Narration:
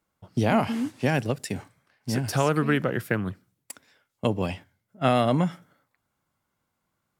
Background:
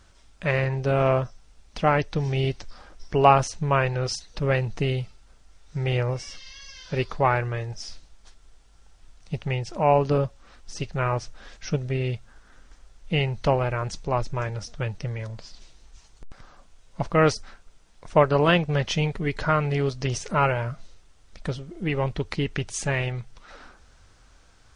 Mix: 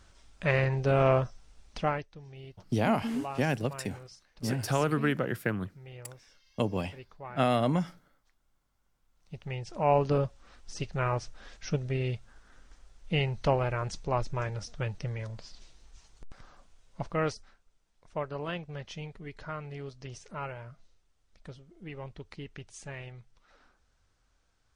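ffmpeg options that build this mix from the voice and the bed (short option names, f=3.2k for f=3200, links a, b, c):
-filter_complex "[0:a]adelay=2350,volume=-4.5dB[a];[1:a]volume=15.5dB,afade=t=out:st=1.66:d=0.41:silence=0.1,afade=t=in:st=9.1:d=0.89:silence=0.125893,afade=t=out:st=16.48:d=1.11:silence=0.251189[b];[a][b]amix=inputs=2:normalize=0"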